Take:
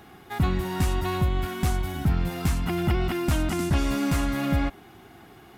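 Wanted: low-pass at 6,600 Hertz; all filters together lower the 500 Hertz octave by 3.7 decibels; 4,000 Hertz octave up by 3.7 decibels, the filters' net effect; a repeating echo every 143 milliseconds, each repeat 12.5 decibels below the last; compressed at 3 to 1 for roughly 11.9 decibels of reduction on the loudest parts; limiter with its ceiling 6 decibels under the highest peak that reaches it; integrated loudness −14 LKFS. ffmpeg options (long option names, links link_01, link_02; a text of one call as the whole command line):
ffmpeg -i in.wav -af "lowpass=6600,equalizer=frequency=500:width_type=o:gain=-6.5,equalizer=frequency=4000:width_type=o:gain=5.5,acompressor=threshold=-36dB:ratio=3,alimiter=level_in=5dB:limit=-24dB:level=0:latency=1,volume=-5dB,aecho=1:1:143|286|429:0.237|0.0569|0.0137,volume=24dB" out.wav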